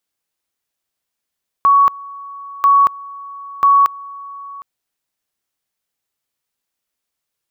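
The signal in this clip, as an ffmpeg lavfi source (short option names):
-f lavfi -i "aevalsrc='pow(10,(-7-22*gte(mod(t,0.99),0.23))/20)*sin(2*PI*1120*t)':d=2.97:s=44100"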